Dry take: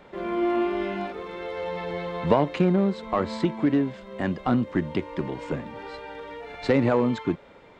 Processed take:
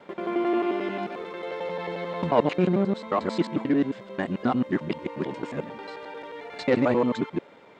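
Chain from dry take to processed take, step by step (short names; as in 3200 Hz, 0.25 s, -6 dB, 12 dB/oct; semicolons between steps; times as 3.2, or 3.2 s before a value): local time reversal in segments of 89 ms; HPF 160 Hz 12 dB/oct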